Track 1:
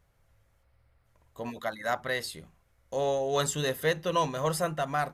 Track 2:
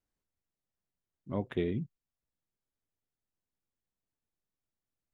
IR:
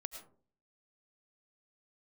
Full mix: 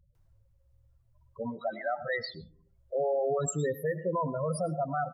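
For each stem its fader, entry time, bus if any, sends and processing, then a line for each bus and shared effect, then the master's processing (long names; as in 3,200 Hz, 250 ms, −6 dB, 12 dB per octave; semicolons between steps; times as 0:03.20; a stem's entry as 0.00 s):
0.0 dB, 0.00 s, send −6 dB, spectral peaks only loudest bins 8
−11.5 dB, 0.15 s, send −14.5 dB, upward compression, threshold −35 dBFS; Chebyshev high-pass with heavy ripple 250 Hz, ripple 9 dB; automatic ducking −12 dB, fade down 0.35 s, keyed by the first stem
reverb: on, RT60 0.45 s, pre-delay 65 ms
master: brickwall limiter −22 dBFS, peak gain reduction 8 dB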